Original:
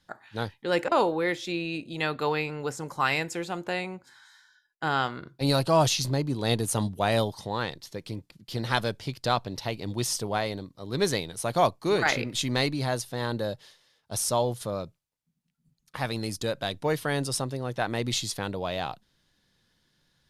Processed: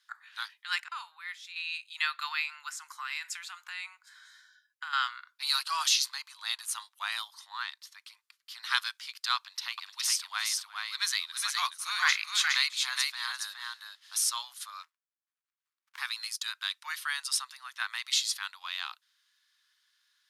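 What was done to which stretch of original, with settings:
0:00.80–0:01.56: clip gain −9 dB
0:02.98–0:04.93: downward compressor 8 to 1, threshold −30 dBFS
0:06.35–0:08.63: tilt shelving filter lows +4.5 dB, about 860 Hz
0:09.36–0:14.31: multi-tap delay 348/416 ms −19.5/−3.5 dB
0:14.83–0:15.98: windowed peak hold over 65 samples
0:16.57–0:17.32: elliptic high-pass filter 580 Hz
whole clip: Butterworth high-pass 1,100 Hz 48 dB per octave; dynamic equaliser 4,400 Hz, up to +3 dB, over −42 dBFS, Q 1.1

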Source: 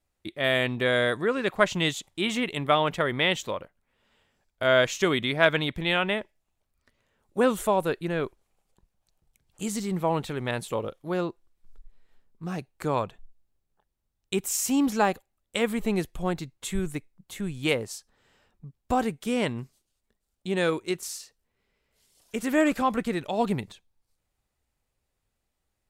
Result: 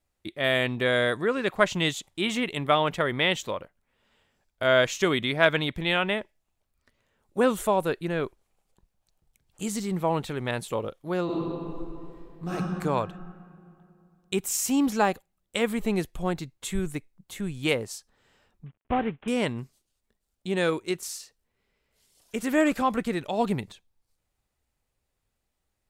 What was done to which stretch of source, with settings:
0:11.24–0:12.52: thrown reverb, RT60 2.7 s, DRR −8.5 dB
0:18.66–0:19.28: variable-slope delta modulation 16 kbit/s

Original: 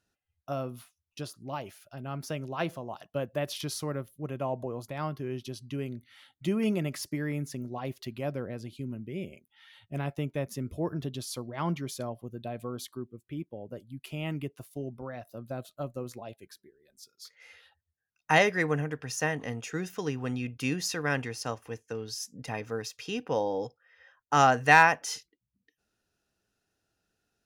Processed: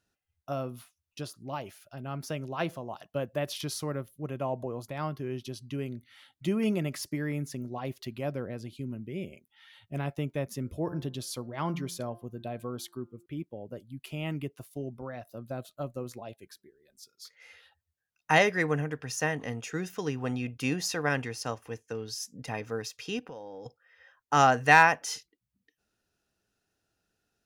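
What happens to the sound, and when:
0:10.55–0:13.26: hum removal 174.3 Hz, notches 10
0:20.20–0:21.09: dynamic equaliser 740 Hz, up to +6 dB, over −50 dBFS, Q 1.4
0:23.19–0:23.66: downward compressor 4 to 1, threshold −42 dBFS

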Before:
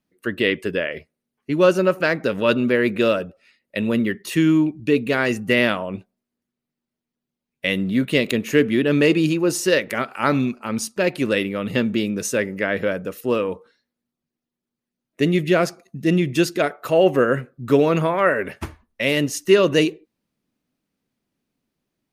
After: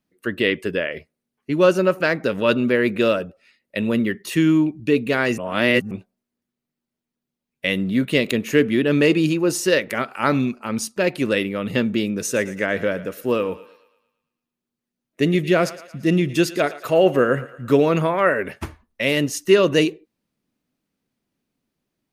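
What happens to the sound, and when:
0:05.38–0:05.91: reverse
0:12.09–0:17.74: feedback echo with a high-pass in the loop 113 ms, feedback 53%, level −16 dB

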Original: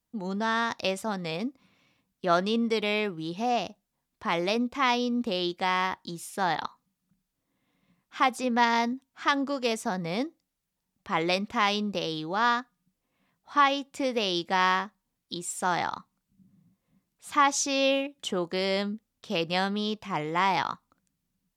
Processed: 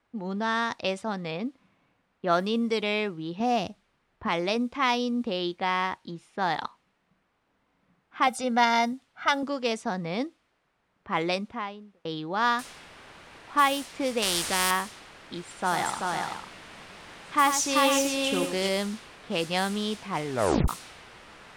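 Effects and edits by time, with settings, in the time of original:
0:01.31–0:02.61: high-frequency loss of the air 54 metres
0:03.40–0:04.28: low-shelf EQ 210 Hz +10 dB
0:05.20–0:06.08: high-shelf EQ 7,300 Hz −10 dB
0:08.27–0:09.43: comb filter 1.4 ms, depth 84%
0:11.15–0:12.05: fade out and dull
0:12.59: noise floor change −63 dB −40 dB
0:14.22–0:14.71: every bin compressed towards the loudest bin 2 to 1
0:15.47–0:18.69: multi-tap delay 95/385/410/502 ms −9/−3.5/−16.5/−10 dB
0:20.25: tape stop 0.43 s
whole clip: low-pass that shuts in the quiet parts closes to 1,600 Hz, open at −20 dBFS; parametric band 9,200 Hz +7 dB 0.29 octaves

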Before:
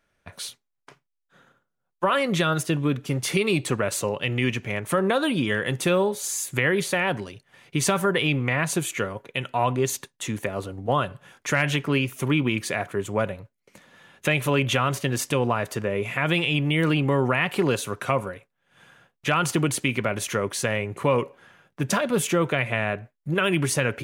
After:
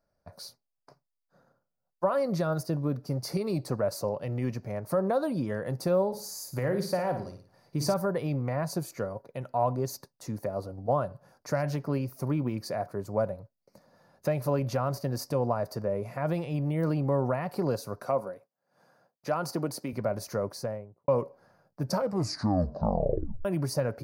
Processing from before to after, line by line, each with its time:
0:06.07–0:07.94: flutter between parallel walls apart 9.4 metres, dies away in 0.43 s
0:18.02–0:19.93: high-pass filter 200 Hz
0:20.44–0:21.08: fade out and dull
0:21.84: tape stop 1.61 s
whole clip: drawn EQ curve 180 Hz 0 dB, 400 Hz −4 dB, 600 Hz +5 dB, 1,400 Hz −8 dB, 3,300 Hz −25 dB, 4,700 Hz +3 dB, 7,500 Hz −14 dB, 14,000 Hz 0 dB; level −4.5 dB

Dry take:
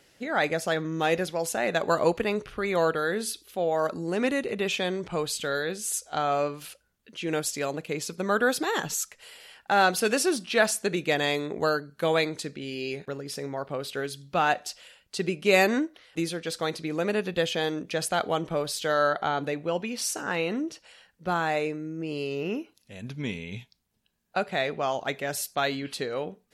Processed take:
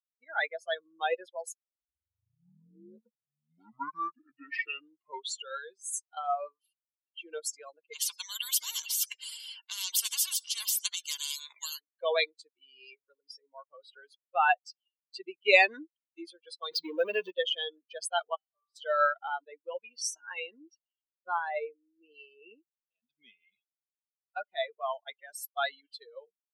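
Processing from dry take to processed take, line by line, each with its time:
0:01.54: tape start 4.16 s
0:07.93–0:11.80: every bin compressed towards the loudest bin 10 to 1
0:16.71–0:17.31: power curve on the samples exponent 0.5
0:18.35–0:18.76: tuned comb filter 130 Hz, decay 1 s, mix 90%
whole clip: spectral dynamics exaggerated over time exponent 3; high-pass filter 490 Hz 24 dB per octave; parametric band 2,800 Hz +5.5 dB 0.51 octaves; level +3.5 dB

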